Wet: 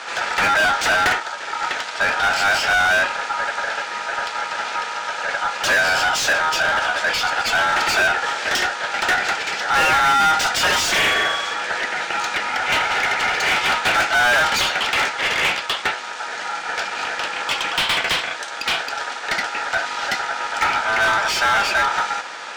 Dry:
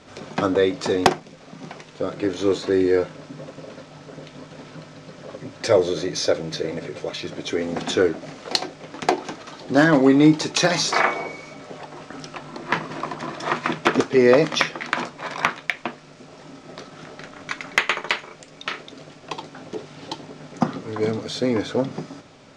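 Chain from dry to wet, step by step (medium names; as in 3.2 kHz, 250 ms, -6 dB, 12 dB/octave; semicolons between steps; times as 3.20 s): ring modulator 1.1 kHz; tilt EQ +2 dB/octave; overdrive pedal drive 35 dB, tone 3 kHz, clips at -0.5 dBFS; trim -8 dB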